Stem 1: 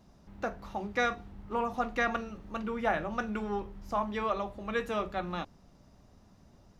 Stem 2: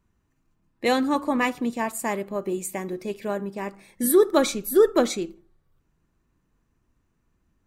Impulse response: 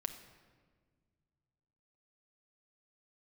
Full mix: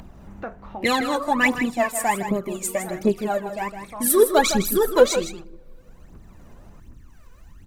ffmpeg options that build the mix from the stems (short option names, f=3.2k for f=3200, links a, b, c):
-filter_complex "[0:a]lowpass=2.3k,volume=0.5dB[a];[1:a]aphaser=in_gain=1:out_gain=1:delay=2.1:decay=0.8:speed=1.3:type=triangular,volume=0dB,asplit=4[b][c][d][e];[c]volume=-19dB[f];[d]volume=-9dB[g];[e]apad=whole_len=299830[h];[a][h]sidechaincompress=threshold=-31dB:ratio=8:attack=16:release=1350[i];[2:a]atrim=start_sample=2205[j];[f][j]afir=irnorm=-1:irlink=0[k];[g]aecho=0:1:159:1[l];[i][b][k][l]amix=inputs=4:normalize=0,acompressor=mode=upward:threshold=-31dB:ratio=2.5"